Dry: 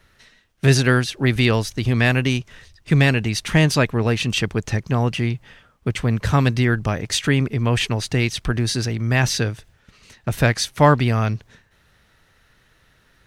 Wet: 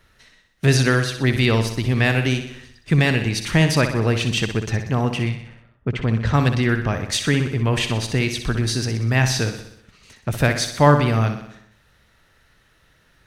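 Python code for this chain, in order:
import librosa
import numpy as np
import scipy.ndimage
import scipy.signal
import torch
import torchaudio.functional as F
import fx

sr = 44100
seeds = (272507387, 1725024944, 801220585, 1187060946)

y = fx.wow_flutter(x, sr, seeds[0], rate_hz=2.1, depth_cents=18.0)
y = fx.env_lowpass(y, sr, base_hz=700.0, full_db=-13.0, at=(5.29, 6.91), fade=0.02)
y = fx.echo_feedback(y, sr, ms=62, feedback_pct=58, wet_db=-9)
y = y * 10.0 ** (-1.0 / 20.0)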